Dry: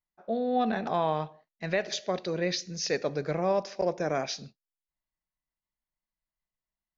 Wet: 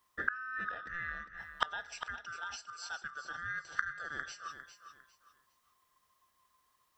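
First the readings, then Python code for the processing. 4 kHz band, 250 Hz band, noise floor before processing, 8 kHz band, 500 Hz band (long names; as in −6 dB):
−10.0 dB, −25.5 dB, below −85 dBFS, can't be measured, −27.0 dB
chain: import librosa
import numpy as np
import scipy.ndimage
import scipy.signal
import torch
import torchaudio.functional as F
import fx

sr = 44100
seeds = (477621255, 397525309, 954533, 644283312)

y = fx.band_swap(x, sr, width_hz=1000)
y = fx.gate_flip(y, sr, shuts_db=-32.0, range_db=-31)
y = fx.echo_feedback(y, sr, ms=403, feedback_pct=27, wet_db=-10)
y = F.gain(torch.from_numpy(y), 17.5).numpy()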